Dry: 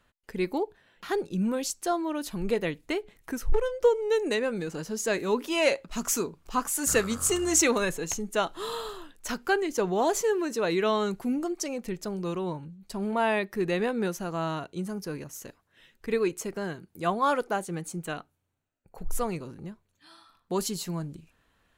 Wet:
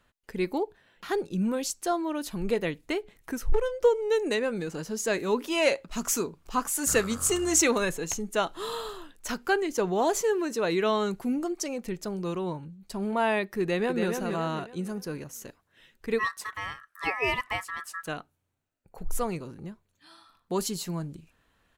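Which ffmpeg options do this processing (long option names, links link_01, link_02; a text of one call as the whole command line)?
ffmpeg -i in.wav -filter_complex "[0:a]asplit=2[link_01][link_02];[link_02]afade=type=in:start_time=13.61:duration=0.01,afade=type=out:start_time=14.08:duration=0.01,aecho=0:1:280|560|840|1120|1400:0.562341|0.224937|0.0899746|0.0359898|0.0143959[link_03];[link_01][link_03]amix=inputs=2:normalize=0,asplit=3[link_04][link_05][link_06];[link_04]afade=type=out:start_time=16.18:duration=0.02[link_07];[link_05]aeval=exprs='val(0)*sin(2*PI*1500*n/s)':channel_layout=same,afade=type=in:start_time=16.18:duration=0.02,afade=type=out:start_time=18.06:duration=0.02[link_08];[link_06]afade=type=in:start_time=18.06:duration=0.02[link_09];[link_07][link_08][link_09]amix=inputs=3:normalize=0" out.wav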